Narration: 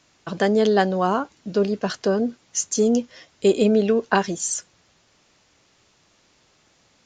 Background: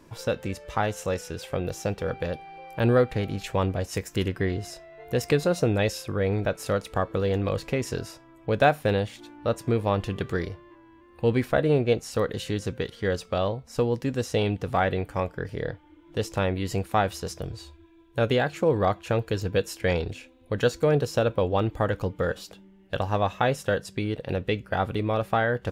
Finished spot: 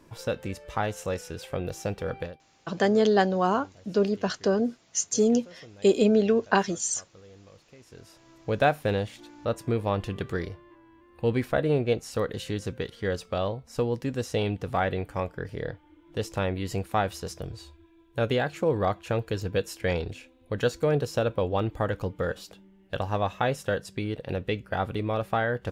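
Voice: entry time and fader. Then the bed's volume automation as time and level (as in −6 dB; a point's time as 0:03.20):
2.40 s, −3.0 dB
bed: 0:02.22 −2.5 dB
0:02.45 −26 dB
0:07.78 −26 dB
0:08.29 −2.5 dB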